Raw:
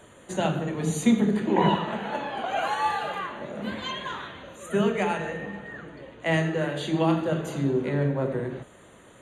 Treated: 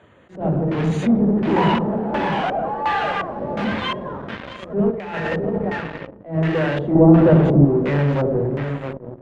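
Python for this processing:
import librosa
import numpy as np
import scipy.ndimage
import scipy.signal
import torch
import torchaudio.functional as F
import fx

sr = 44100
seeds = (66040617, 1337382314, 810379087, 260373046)

p1 = fx.delta_mod(x, sr, bps=64000, step_db=-33.0, at=(3.25, 3.65))
p2 = scipy.signal.sosfilt(scipy.signal.butter(4, 62.0, 'highpass', fs=sr, output='sos'), p1)
p3 = fx.low_shelf(p2, sr, hz=100.0, db=7.0)
p4 = p3 + 10.0 ** (-12.0 / 20.0) * np.pad(p3, (int(654 * sr / 1000.0), 0))[:len(p3)]
p5 = fx.fuzz(p4, sr, gain_db=37.0, gate_db=-38.0)
p6 = p4 + (p5 * 10.0 ** (-8.0 / 20.0))
p7 = fx.filter_lfo_lowpass(p6, sr, shape='square', hz=1.4, low_hz=610.0, high_hz=2600.0, q=1.0)
p8 = fx.over_compress(p7, sr, threshold_db=-23.0, ratio=-0.5, at=(4.9, 5.7), fade=0.02)
p9 = fx.tilt_shelf(p8, sr, db=9.0, hz=1300.0, at=(6.95, 7.65))
p10 = fx.attack_slew(p9, sr, db_per_s=180.0)
y = p10 * 10.0 ** (-1.0 / 20.0)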